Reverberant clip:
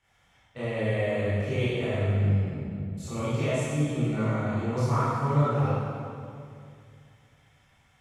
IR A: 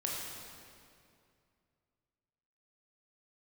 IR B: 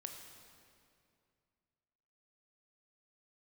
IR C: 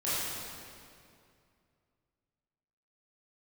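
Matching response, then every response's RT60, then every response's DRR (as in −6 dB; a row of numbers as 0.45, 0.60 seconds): C; 2.4, 2.4, 2.4 seconds; −3.5, 3.0, −12.0 decibels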